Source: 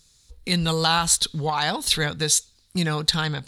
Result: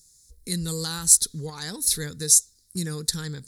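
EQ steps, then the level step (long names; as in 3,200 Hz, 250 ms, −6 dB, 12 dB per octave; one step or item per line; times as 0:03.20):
drawn EQ curve 450 Hz 0 dB, 680 Hz −17 dB, 1,900 Hz −5 dB, 2,800 Hz −17 dB, 5,200 Hz +6 dB, 11,000 Hz +13 dB
−5.5 dB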